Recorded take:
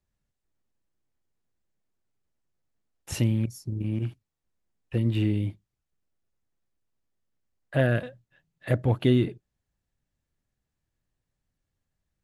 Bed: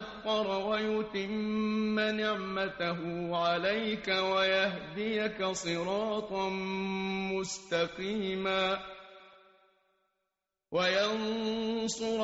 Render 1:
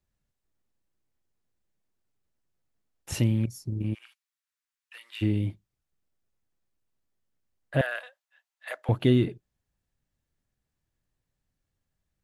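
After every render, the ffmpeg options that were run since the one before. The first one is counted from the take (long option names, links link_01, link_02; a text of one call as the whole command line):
ffmpeg -i in.wav -filter_complex "[0:a]asplit=3[link_01][link_02][link_03];[link_01]afade=type=out:start_time=3.93:duration=0.02[link_04];[link_02]highpass=frequency=1200:width=0.5412,highpass=frequency=1200:width=1.3066,afade=type=in:start_time=3.93:duration=0.02,afade=type=out:start_time=5.21:duration=0.02[link_05];[link_03]afade=type=in:start_time=5.21:duration=0.02[link_06];[link_04][link_05][link_06]amix=inputs=3:normalize=0,asettb=1/sr,asplit=3[link_07][link_08][link_09];[link_07]atrim=end=7.814[link_10];[link_08]atrim=start=7.81:end=8.89,asetpts=PTS-STARTPTS,afade=type=in:duration=0.004:curve=qsin,afade=type=out:start_time=1.076:duration=0.004:curve=qsin,highpass=frequency=770:width=0.5412,highpass=frequency=770:width=1.3066[link_11];[link_09]atrim=start=8.886[link_12];[link_10][link_11]acrossfade=duration=0.004:curve1=hsin:curve2=qsin[link_13];[link_13][link_12]acrossfade=duration=0.004:curve1=qsin:curve2=hsin" out.wav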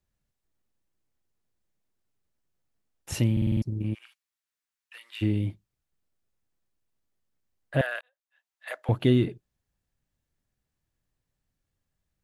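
ffmpeg -i in.wav -filter_complex "[0:a]asplit=8[link_01][link_02][link_03][link_04][link_05][link_06][link_07][link_08];[link_01]atrim=end=3.372[link_09];[link_02]atrim=start=3.318:end=3.372[link_10];[link_03]atrim=start=3.318:end=3.372[link_11];[link_04]atrim=start=3.318:end=3.372[link_12];[link_05]atrim=start=3.318:end=3.372[link_13];[link_06]atrim=start=3.318:end=3.372[link_14];[link_07]atrim=start=3.618:end=8.01,asetpts=PTS-STARTPTS,afade=type=out:start_time=4.388:duration=0.004:curve=hsin[link_15];[link_08]atrim=start=8.01,asetpts=PTS-STARTPTS,afade=type=in:duration=0.67[link_16];[link_09][link_10]acrossfade=duration=0.004:curve1=hsin:curve2=hsin[link_17];[link_17][link_11]acrossfade=duration=0.004:curve1=hsin:curve2=hsin[link_18];[link_18][link_12]acrossfade=duration=0.004:curve1=hsin:curve2=hsin[link_19];[link_19][link_13]acrossfade=duration=0.004:curve1=hsin:curve2=hsin[link_20];[link_20][link_14]acrossfade=duration=0.004:curve1=hsin:curve2=hsin[link_21];[link_15][link_16]concat=n=2:v=0:a=1[link_22];[link_21][link_22]acrossfade=duration=0.004:curve1=hsin:curve2=hsin" out.wav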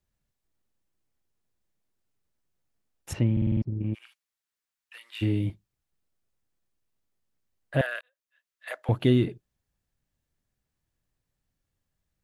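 ffmpeg -i in.wav -filter_complex "[0:a]asplit=3[link_01][link_02][link_03];[link_01]afade=type=out:start_time=3.12:duration=0.02[link_04];[link_02]lowpass=2000,afade=type=in:start_time=3.12:duration=0.02,afade=type=out:start_time=3.93:duration=0.02[link_05];[link_03]afade=type=in:start_time=3.93:duration=0.02[link_06];[link_04][link_05][link_06]amix=inputs=3:normalize=0,asettb=1/sr,asplit=3[link_07][link_08][link_09];[link_07]atrim=end=5.104[link_10];[link_08]atrim=start=5.1:end=5.5,asetpts=PTS-STARTPTS,afade=type=in:duration=0.004:curve=qsin,afade=type=out:start_time=0.396:duration=0.004:curve=qsin,asplit=2[link_11][link_12];[link_12]adelay=26,volume=-6.5dB[link_13];[link_11][link_13]amix=inputs=2:normalize=0,atrim=end_sample=17640[link_14];[link_09]atrim=start=5.496[link_15];[link_10][link_14]acrossfade=duration=0.004:curve1=hsin:curve2=qsin[link_16];[link_16][link_15]acrossfade=duration=0.004:curve1=qsin:curve2=hsin,asettb=1/sr,asplit=3[link_17][link_18][link_19];[link_17]atrim=end=7.864[link_20];[link_18]atrim=start=7.86:end=8.68,asetpts=PTS-STARTPTS,afade=type=in:duration=0.004:curve=qsin,afade=type=out:start_time=0.816:duration=0.004:curve=qsin,equalizer=frequency=810:width_type=o:width=0.3:gain=-14[link_21];[link_19]atrim=start=8.676[link_22];[link_20][link_21]acrossfade=duration=0.004:curve1=hsin:curve2=qsin[link_23];[link_23][link_22]acrossfade=duration=0.004:curve1=qsin:curve2=hsin" out.wav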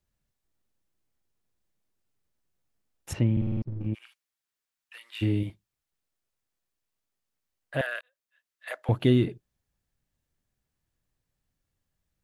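ffmpeg -i in.wav -filter_complex "[0:a]asettb=1/sr,asplit=3[link_01][link_02][link_03];[link_01]atrim=end=3.414[link_04];[link_02]atrim=start=3.41:end=3.86,asetpts=PTS-STARTPTS,afade=type=in:duration=0.004:curve=qsin,afade=type=out:start_time=0.446:duration=0.004:curve=qsin,aeval=exprs='if(lt(val(0),0),0.447*val(0),val(0))':channel_layout=same[link_05];[link_03]atrim=start=3.856[link_06];[link_04][link_05]acrossfade=duration=0.004:curve1=hsin:curve2=qsin[link_07];[link_07][link_06]acrossfade=duration=0.004:curve1=qsin:curve2=hsin,asettb=1/sr,asplit=3[link_08][link_09][link_10];[link_08]atrim=end=5.434[link_11];[link_09]atrim=start=5.43:end=7.87,asetpts=PTS-STARTPTS,afade=type=in:duration=0.004:curve=qsin,afade=type=out:start_time=2.436:duration=0.004:curve=qsin,lowshelf=frequency=430:gain=-8[link_12];[link_10]atrim=start=7.866[link_13];[link_11][link_12]acrossfade=duration=0.004:curve1=hsin:curve2=qsin[link_14];[link_14][link_13]acrossfade=duration=0.004:curve1=qsin:curve2=hsin" out.wav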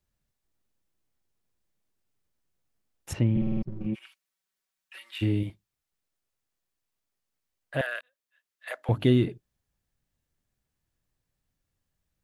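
ffmpeg -i in.wav -filter_complex "[0:a]asettb=1/sr,asplit=3[link_01][link_02][link_03];[link_01]atrim=end=3.354[link_04];[link_02]atrim=start=3.35:end=5.18,asetpts=PTS-STARTPTS,afade=type=in:duration=0.004:curve=qsin,afade=type=out:start_time=1.826:duration=0.004:curve=qsin,aecho=1:1:5.3:0.8,atrim=end_sample=80703[link_05];[link_03]atrim=start=5.176[link_06];[link_04][link_05]acrossfade=duration=0.004:curve1=hsin:curve2=qsin[link_07];[link_07][link_06]acrossfade=duration=0.004:curve1=qsin:curve2=hsin,asettb=1/sr,asplit=3[link_08][link_09][link_10];[link_08]atrim=end=7.984[link_11];[link_09]atrim=start=7.98:end=9.05,asetpts=PTS-STARTPTS,afade=type=in:duration=0.004:curve=qsin,afade=type=out:start_time=1.066:duration=0.004:curve=qsin,bandreject=frequency=50:width_type=h:width=6,bandreject=frequency=100:width_type=h:width=6,bandreject=frequency=150:width_type=h:width=6,bandreject=frequency=200:width_type=h:width=6,bandreject=frequency=250:width_type=h:width=6,bandreject=frequency=300:width_type=h:width=6[link_12];[link_10]atrim=start=9.046[link_13];[link_11][link_12]acrossfade=duration=0.004:curve1=hsin:curve2=qsin[link_14];[link_14][link_13]acrossfade=duration=0.004:curve1=qsin:curve2=hsin" out.wav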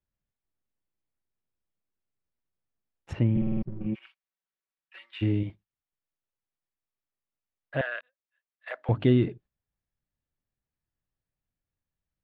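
ffmpeg -i in.wav -af "agate=range=-8dB:threshold=-49dB:ratio=16:detection=peak,lowpass=2800" out.wav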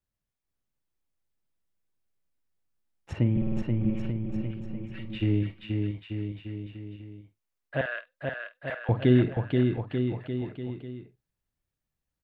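ffmpeg -i in.wav -filter_complex "[0:a]asplit=2[link_01][link_02];[link_02]adelay=48,volume=-14dB[link_03];[link_01][link_03]amix=inputs=2:normalize=0,asplit=2[link_04][link_05];[link_05]aecho=0:1:480|888|1235|1530|1780:0.631|0.398|0.251|0.158|0.1[link_06];[link_04][link_06]amix=inputs=2:normalize=0" out.wav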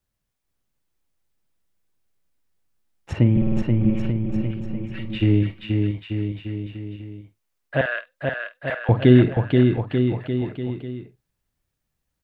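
ffmpeg -i in.wav -af "volume=7.5dB" out.wav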